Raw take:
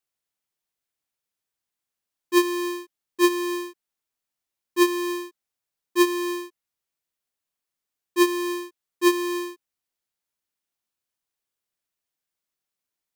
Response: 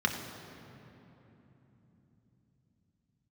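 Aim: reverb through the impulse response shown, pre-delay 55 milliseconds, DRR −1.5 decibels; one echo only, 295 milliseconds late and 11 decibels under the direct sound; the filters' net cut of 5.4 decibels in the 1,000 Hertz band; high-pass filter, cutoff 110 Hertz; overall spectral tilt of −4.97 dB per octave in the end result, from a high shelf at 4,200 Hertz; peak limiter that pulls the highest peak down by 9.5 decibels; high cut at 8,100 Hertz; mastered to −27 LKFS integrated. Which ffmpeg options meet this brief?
-filter_complex "[0:a]highpass=110,lowpass=8100,equalizer=frequency=1000:width_type=o:gain=-6,highshelf=frequency=4200:gain=7.5,alimiter=limit=-15dB:level=0:latency=1,aecho=1:1:295:0.282,asplit=2[link_01][link_02];[1:a]atrim=start_sample=2205,adelay=55[link_03];[link_02][link_03]afir=irnorm=-1:irlink=0,volume=-8dB[link_04];[link_01][link_04]amix=inputs=2:normalize=0,volume=1dB"

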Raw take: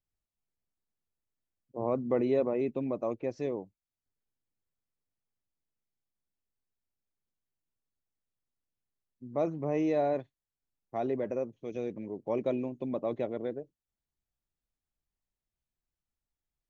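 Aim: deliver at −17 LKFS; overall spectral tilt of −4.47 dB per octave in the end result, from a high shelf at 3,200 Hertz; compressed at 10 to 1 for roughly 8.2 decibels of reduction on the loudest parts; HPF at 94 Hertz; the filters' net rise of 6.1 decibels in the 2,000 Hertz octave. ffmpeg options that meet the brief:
ffmpeg -i in.wav -af "highpass=94,equalizer=frequency=2000:width_type=o:gain=5.5,highshelf=frequency=3200:gain=5,acompressor=threshold=-31dB:ratio=10,volume=20.5dB" out.wav

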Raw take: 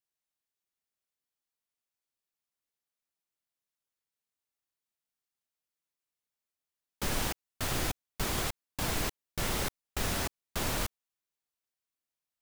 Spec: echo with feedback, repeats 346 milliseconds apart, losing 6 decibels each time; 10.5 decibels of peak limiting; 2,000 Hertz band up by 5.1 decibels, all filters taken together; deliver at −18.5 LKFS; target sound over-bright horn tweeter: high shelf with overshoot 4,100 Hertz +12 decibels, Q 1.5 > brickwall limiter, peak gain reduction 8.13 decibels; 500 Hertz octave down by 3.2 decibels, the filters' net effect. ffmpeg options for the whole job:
ffmpeg -i in.wav -af "equalizer=frequency=500:width_type=o:gain=-4.5,equalizer=frequency=2000:width_type=o:gain=9,alimiter=level_in=4dB:limit=-24dB:level=0:latency=1,volume=-4dB,highshelf=frequency=4100:width_type=q:width=1.5:gain=12,aecho=1:1:346|692|1038|1384|1730|2076:0.501|0.251|0.125|0.0626|0.0313|0.0157,volume=16.5dB,alimiter=limit=-10dB:level=0:latency=1" out.wav

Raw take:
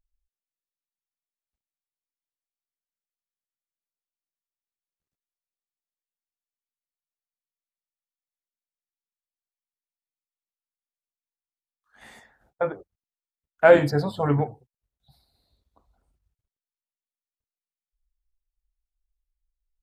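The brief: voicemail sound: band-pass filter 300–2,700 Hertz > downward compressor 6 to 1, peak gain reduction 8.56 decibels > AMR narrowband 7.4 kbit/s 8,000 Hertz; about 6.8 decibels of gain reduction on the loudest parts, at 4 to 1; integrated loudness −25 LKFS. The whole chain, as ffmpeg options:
ffmpeg -i in.wav -af "acompressor=threshold=-16dB:ratio=4,highpass=300,lowpass=2700,acompressor=threshold=-23dB:ratio=6,volume=7dB" -ar 8000 -c:a libopencore_amrnb -b:a 7400 out.amr

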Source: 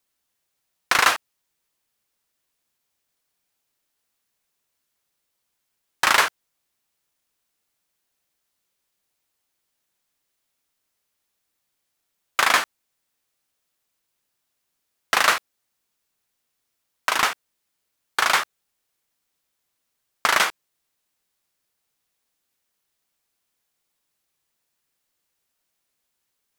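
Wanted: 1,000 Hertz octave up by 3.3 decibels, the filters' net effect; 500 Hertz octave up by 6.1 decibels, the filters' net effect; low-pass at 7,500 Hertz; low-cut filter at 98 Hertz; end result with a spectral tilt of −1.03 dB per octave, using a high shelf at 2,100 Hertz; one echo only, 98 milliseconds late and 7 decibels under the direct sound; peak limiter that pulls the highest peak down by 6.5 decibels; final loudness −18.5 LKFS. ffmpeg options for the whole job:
ffmpeg -i in.wav -af "highpass=98,lowpass=7500,equalizer=frequency=500:width_type=o:gain=7,equalizer=frequency=1000:width_type=o:gain=4.5,highshelf=frequency=2100:gain=-7.5,alimiter=limit=-7.5dB:level=0:latency=1,aecho=1:1:98:0.447,volume=4.5dB" out.wav

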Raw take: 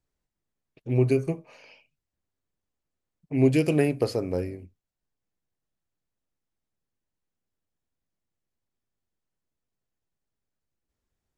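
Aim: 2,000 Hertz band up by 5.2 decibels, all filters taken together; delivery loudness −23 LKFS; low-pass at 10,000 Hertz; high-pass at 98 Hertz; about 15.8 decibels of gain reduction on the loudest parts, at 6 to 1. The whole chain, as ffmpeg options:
ffmpeg -i in.wav -af "highpass=98,lowpass=10000,equalizer=frequency=2000:width_type=o:gain=6.5,acompressor=threshold=-34dB:ratio=6,volume=16.5dB" out.wav

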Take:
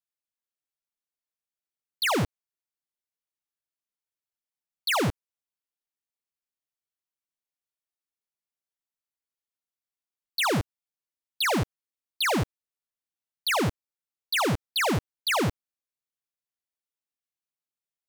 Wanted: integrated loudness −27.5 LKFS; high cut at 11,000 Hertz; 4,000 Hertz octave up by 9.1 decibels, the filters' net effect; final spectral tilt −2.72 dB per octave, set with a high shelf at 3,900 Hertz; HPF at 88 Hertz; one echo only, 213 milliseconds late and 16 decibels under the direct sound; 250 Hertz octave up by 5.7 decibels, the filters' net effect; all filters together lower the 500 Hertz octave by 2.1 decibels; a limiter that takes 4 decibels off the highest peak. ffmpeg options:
ffmpeg -i in.wav -af "highpass=88,lowpass=11000,equalizer=frequency=250:width_type=o:gain=9,equalizer=frequency=500:width_type=o:gain=-6,highshelf=frequency=3900:gain=4.5,equalizer=frequency=4000:width_type=o:gain=8.5,alimiter=limit=-14dB:level=0:latency=1,aecho=1:1:213:0.158,volume=-4dB" out.wav

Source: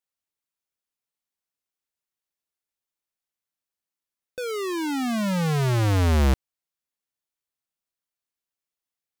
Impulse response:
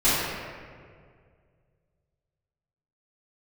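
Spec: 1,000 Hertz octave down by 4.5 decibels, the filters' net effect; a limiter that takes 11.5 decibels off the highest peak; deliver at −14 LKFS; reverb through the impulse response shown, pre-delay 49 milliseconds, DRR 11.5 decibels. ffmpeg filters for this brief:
-filter_complex "[0:a]equalizer=frequency=1000:width_type=o:gain=-6,alimiter=level_in=4dB:limit=-24dB:level=0:latency=1,volume=-4dB,asplit=2[link_01][link_02];[1:a]atrim=start_sample=2205,adelay=49[link_03];[link_02][link_03]afir=irnorm=-1:irlink=0,volume=-29.5dB[link_04];[link_01][link_04]amix=inputs=2:normalize=0,volume=16.5dB"

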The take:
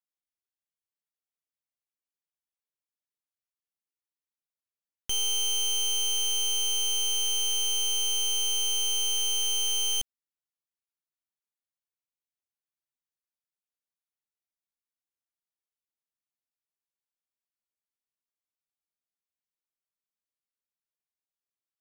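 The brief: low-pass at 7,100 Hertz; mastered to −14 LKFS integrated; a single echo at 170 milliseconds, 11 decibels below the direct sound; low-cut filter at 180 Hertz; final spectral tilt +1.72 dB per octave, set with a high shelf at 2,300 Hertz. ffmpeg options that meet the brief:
ffmpeg -i in.wav -af "highpass=180,lowpass=7100,highshelf=frequency=2300:gain=5.5,aecho=1:1:170:0.282,volume=9dB" out.wav

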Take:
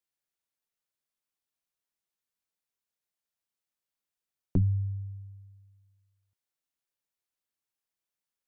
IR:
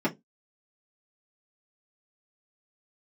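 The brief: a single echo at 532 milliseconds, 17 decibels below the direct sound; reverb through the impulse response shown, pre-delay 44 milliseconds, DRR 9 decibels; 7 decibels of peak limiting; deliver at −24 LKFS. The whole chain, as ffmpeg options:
-filter_complex "[0:a]alimiter=level_in=1dB:limit=-24dB:level=0:latency=1,volume=-1dB,aecho=1:1:532:0.141,asplit=2[link_01][link_02];[1:a]atrim=start_sample=2205,adelay=44[link_03];[link_02][link_03]afir=irnorm=-1:irlink=0,volume=-19.5dB[link_04];[link_01][link_04]amix=inputs=2:normalize=0,volume=9.5dB"

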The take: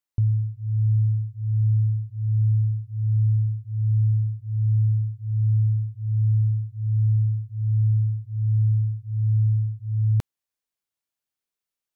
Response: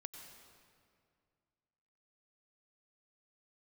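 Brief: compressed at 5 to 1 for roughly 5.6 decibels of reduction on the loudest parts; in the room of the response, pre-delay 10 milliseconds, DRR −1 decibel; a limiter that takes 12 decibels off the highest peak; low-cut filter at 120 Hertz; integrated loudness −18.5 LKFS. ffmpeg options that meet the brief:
-filter_complex "[0:a]highpass=120,acompressor=threshold=-28dB:ratio=5,alimiter=level_in=10dB:limit=-24dB:level=0:latency=1,volume=-10dB,asplit=2[link_01][link_02];[1:a]atrim=start_sample=2205,adelay=10[link_03];[link_02][link_03]afir=irnorm=-1:irlink=0,volume=5dB[link_04];[link_01][link_04]amix=inputs=2:normalize=0,volume=14.5dB"

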